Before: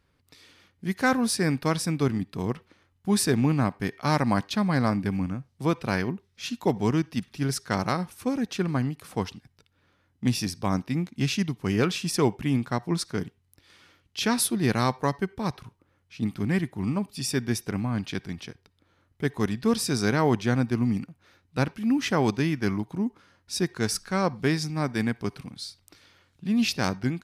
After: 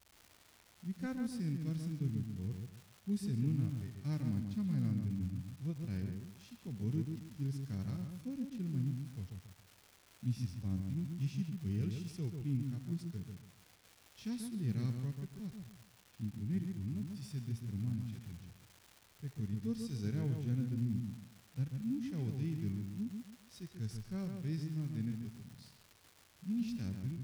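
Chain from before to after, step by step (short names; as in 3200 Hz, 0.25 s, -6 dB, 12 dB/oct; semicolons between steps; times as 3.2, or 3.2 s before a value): passive tone stack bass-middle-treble 10-0-1; harmonic-percussive split percussive -12 dB; crackle 450/s -53 dBFS; on a send: darkening echo 0.138 s, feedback 30%, low-pass 2600 Hz, level -5 dB; on the sum: gain +4.5 dB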